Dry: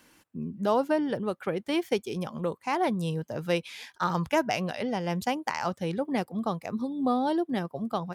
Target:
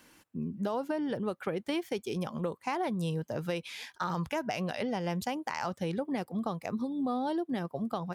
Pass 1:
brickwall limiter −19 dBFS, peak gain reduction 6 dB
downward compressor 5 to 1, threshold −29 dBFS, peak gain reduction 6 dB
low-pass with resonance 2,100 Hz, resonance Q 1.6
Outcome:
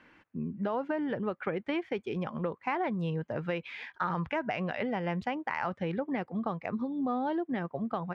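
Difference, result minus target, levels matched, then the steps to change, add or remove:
2,000 Hz band +3.0 dB
remove: low-pass with resonance 2,100 Hz, resonance Q 1.6

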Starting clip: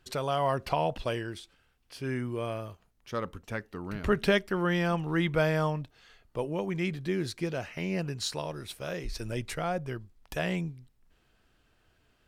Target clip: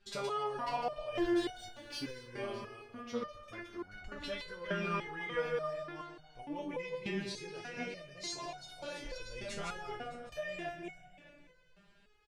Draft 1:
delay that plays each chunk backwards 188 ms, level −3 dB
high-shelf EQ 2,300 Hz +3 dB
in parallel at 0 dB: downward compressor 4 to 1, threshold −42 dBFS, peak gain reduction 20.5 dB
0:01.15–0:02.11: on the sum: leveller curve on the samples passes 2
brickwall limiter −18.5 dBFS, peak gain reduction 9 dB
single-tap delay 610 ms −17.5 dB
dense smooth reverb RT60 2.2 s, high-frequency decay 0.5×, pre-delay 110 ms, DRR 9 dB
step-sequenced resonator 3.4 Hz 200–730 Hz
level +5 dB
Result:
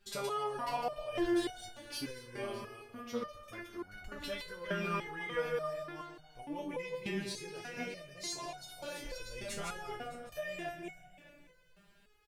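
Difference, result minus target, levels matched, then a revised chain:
8,000 Hz band +3.5 dB
delay that plays each chunk backwards 188 ms, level −3 dB
low-pass filter 6,300 Hz 12 dB per octave
high-shelf EQ 2,300 Hz +3 dB
in parallel at 0 dB: downward compressor 4 to 1, threshold −42 dBFS, peak gain reduction 20.5 dB
0:01.15–0:02.11: on the sum: leveller curve on the samples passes 2
brickwall limiter −18.5 dBFS, peak gain reduction 9 dB
single-tap delay 610 ms −17.5 dB
dense smooth reverb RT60 2.2 s, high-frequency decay 0.5×, pre-delay 110 ms, DRR 9 dB
step-sequenced resonator 3.4 Hz 200–730 Hz
level +5 dB

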